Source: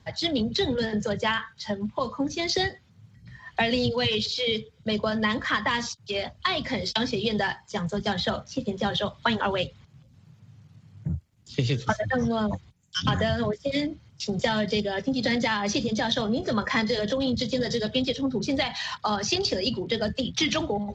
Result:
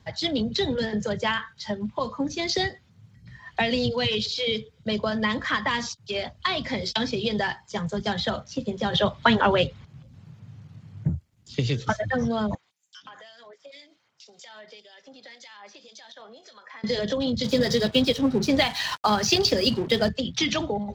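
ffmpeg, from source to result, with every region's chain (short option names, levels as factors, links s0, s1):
-filter_complex "[0:a]asettb=1/sr,asplit=3[s0][s1][s2];[s0]atrim=end=8.934[s3];[s1]atrim=start=8.93:end=11.1,asetpts=PTS-STARTPTS,afade=t=in:d=0.004:c=qsin,afade=t=out:st=2.166:d=0.004:c=qsin,highshelf=f=4400:g=-7,acontrast=60[s4];[s2]atrim=start=11.096[s5];[s3][s4]acrossfade=d=0.004:c1=hsin:c2=qsin[s6];[s6][s5]acrossfade=d=0.004:c1=qsin:c2=hsin,asettb=1/sr,asplit=3[s7][s8][s9];[s7]atrim=end=12.554[s10];[s8]atrim=start=12.55:end=16.84,asetpts=PTS-STARTPTS,afade=t=in:d=0.004:c=qsin,afade=t=out:st=4.286:d=0.004:c=qsin,highpass=680,acompressor=threshold=0.00631:ratio=3:attack=3.2:release=140:knee=1:detection=peak,acrossover=split=2500[s11][s12];[s11]aeval=exprs='val(0)*(1-0.7/2+0.7/2*cos(2*PI*1.9*n/s))':c=same[s13];[s12]aeval=exprs='val(0)*(1-0.7/2-0.7/2*cos(2*PI*1.9*n/s))':c=same[s14];[s13][s14]amix=inputs=2:normalize=0[s15];[s9]atrim=start=16.836[s16];[s10][s15]acrossfade=d=0.004:c1=hsin:c2=qsin[s17];[s17][s16]acrossfade=d=0.004:c1=qsin:c2=hsin,asettb=1/sr,asplit=3[s18][s19][s20];[s18]atrim=end=17.444[s21];[s19]atrim=start=17.44:end=20.09,asetpts=PTS-STARTPTS,afade=t=in:d=0.004:c=qsin,afade=t=out:st=2.646:d=0.004:c=qsin,acontrast=35,aeval=exprs='sgn(val(0))*max(abs(val(0))-0.0112,0)':c=same[s22];[s20]atrim=start=20.086[s23];[s21][s22]acrossfade=d=0.004:c1=hsin:c2=qsin[s24];[s24][s23]acrossfade=d=0.004:c1=qsin:c2=hsin"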